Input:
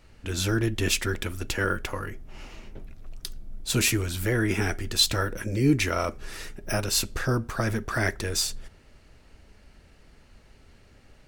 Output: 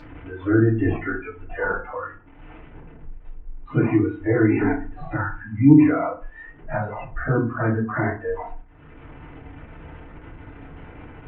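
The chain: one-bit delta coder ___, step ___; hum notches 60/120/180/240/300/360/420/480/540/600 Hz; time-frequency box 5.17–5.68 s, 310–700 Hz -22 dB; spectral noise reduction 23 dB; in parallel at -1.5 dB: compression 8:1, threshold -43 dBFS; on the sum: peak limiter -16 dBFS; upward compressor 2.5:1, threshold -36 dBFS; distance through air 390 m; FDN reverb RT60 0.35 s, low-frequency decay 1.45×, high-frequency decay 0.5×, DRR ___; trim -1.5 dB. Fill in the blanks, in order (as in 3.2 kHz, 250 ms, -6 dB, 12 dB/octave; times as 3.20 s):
16 kbps, -33.5 dBFS, -6.5 dB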